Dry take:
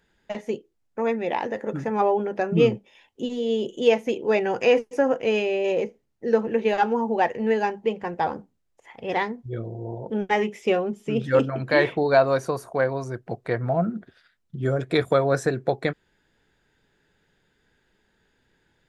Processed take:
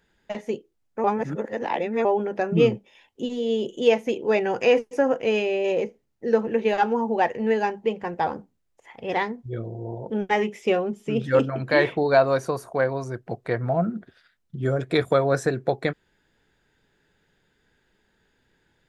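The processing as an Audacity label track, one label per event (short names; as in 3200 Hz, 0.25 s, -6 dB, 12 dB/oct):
1.040000	2.050000	reverse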